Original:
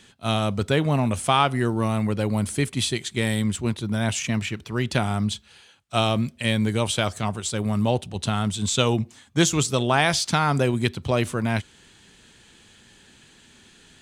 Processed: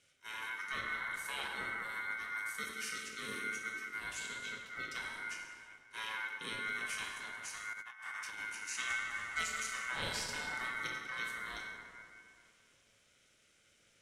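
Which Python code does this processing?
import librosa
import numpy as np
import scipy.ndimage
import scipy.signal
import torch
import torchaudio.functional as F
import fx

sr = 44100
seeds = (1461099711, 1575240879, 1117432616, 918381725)

p1 = fx.band_invert(x, sr, width_hz=2000)
p2 = fx.tone_stack(p1, sr, knobs='6-0-2')
p3 = p2 + fx.echo_single(p2, sr, ms=135, db=-24.0, dry=0)
p4 = fx.rev_plate(p3, sr, seeds[0], rt60_s=2.4, hf_ratio=0.45, predelay_ms=0, drr_db=-2.5)
p5 = p4 * np.sin(2.0 * np.pi * 330.0 * np.arange(len(p4)) / sr)
p6 = fx.comb_fb(p5, sr, f0_hz=110.0, decay_s=0.23, harmonics='all', damping=0.0, mix_pct=50)
p7 = fx.over_compress(p6, sr, threshold_db=-50.0, ratio=-0.5, at=(7.73, 8.4))
p8 = fx.high_shelf(p7, sr, hz=11000.0, db=-3.0)
p9 = fx.band_squash(p8, sr, depth_pct=100, at=(8.9, 9.57))
y = F.gain(torch.from_numpy(p9), 4.5).numpy()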